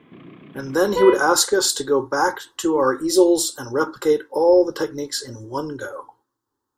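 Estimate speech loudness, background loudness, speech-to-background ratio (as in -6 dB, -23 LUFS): -19.5 LUFS, -25.5 LUFS, 6.0 dB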